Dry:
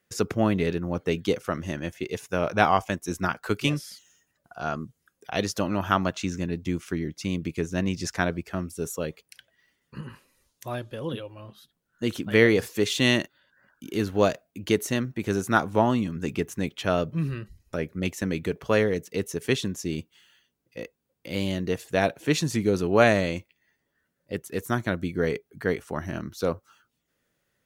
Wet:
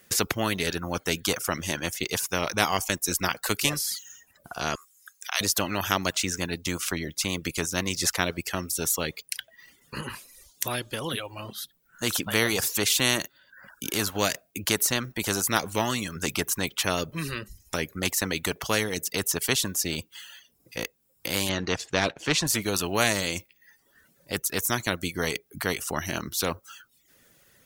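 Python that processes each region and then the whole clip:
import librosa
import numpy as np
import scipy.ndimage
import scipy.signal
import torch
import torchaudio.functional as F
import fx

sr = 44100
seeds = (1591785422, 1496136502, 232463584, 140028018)

y = fx.chain(x, sr, fx.highpass(hz=1100.0, slope=24),
    fx.peak_eq(hz=6600.0, db=6.0, octaves=0.26), at=(4.75, 5.41))
y = fx.chain(y, sr, fx.leveller(passes=1),
    fx.air_absorb(metres=150.0), at=(21.49, 22.47))
y = fx.high_shelf(y, sr, hz=4600.0, db=8.5)
y = fx.dereverb_blind(y, sr, rt60_s=0.59)
y = fx.spectral_comp(y, sr, ratio=2.0)
y = y * librosa.db_to_amplitude(-1.5)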